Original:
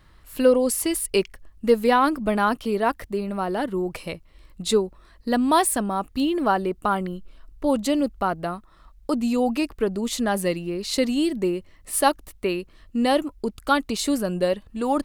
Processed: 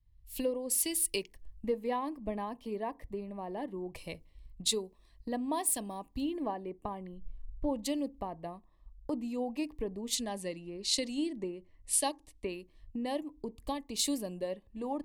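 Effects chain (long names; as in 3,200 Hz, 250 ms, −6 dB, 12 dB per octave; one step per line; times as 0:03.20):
0:10.15–0:12.53: low-pass filter 10,000 Hz 24 dB per octave
downward compressor 3 to 1, threshold −33 dBFS, peak gain reduction 15.5 dB
Butterworth band-reject 1,400 Hz, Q 2.3
feedback delay network reverb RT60 0.34 s, low-frequency decay 1.5×, high-frequency decay 0.35×, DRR 17.5 dB
multiband upward and downward expander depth 100%
level −3.5 dB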